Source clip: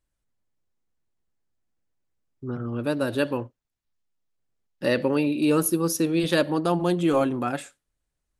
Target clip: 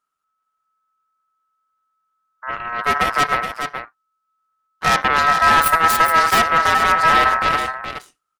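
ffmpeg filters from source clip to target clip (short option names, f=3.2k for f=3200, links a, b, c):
-af "aeval=exprs='0.355*(cos(1*acos(clip(val(0)/0.355,-1,1)))-cos(1*PI/2))+0.141*(cos(8*acos(clip(val(0)/0.355,-1,1)))-cos(8*PI/2))':c=same,aecho=1:1:422:0.422,aeval=exprs='val(0)*sin(2*PI*1300*n/s)':c=same,volume=3dB"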